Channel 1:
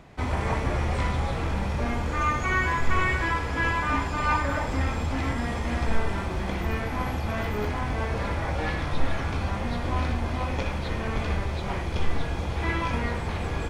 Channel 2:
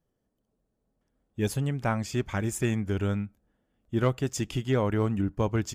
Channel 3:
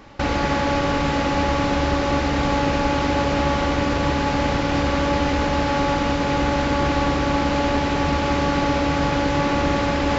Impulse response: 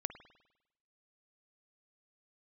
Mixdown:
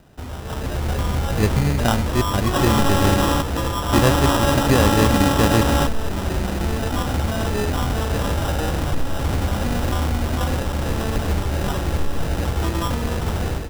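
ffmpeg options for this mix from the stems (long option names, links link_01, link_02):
-filter_complex "[0:a]lowpass=1000,alimiter=limit=-23dB:level=0:latency=1:release=394,volume=-0.5dB[link_01];[1:a]volume=-3.5dB,asplit=2[link_02][link_03];[2:a]adelay=2350,volume=-9.5dB[link_04];[link_03]apad=whole_len=557238[link_05];[link_04][link_05]sidechaingate=range=-15dB:threshold=-56dB:ratio=16:detection=peak[link_06];[link_01][link_02][link_06]amix=inputs=3:normalize=0,acrusher=samples=20:mix=1:aa=0.000001,dynaudnorm=framelen=450:gausssize=3:maxgain=11dB"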